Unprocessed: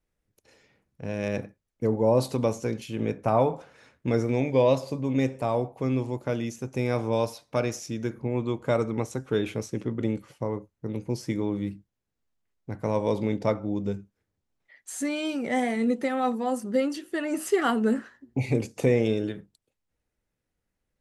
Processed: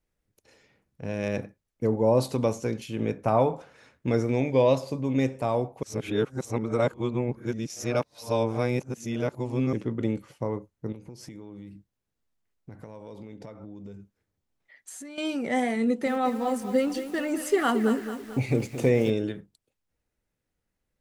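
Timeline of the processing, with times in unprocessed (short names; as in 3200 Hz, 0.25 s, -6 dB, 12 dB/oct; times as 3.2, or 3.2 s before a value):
5.83–9.73 reverse
10.92–15.18 compressor 16:1, threshold -38 dBFS
15.84–19.1 lo-fi delay 0.221 s, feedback 55%, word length 7-bit, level -10.5 dB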